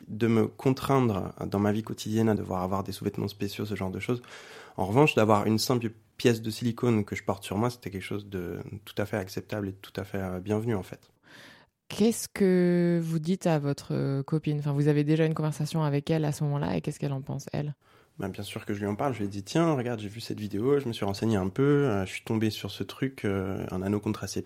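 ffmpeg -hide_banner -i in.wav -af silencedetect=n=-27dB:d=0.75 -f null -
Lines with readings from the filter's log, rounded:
silence_start: 10.93
silence_end: 11.91 | silence_duration: 0.98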